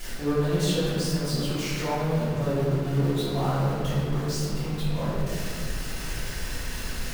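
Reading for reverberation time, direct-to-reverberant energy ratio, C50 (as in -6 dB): 2.0 s, -12.5 dB, -2.5 dB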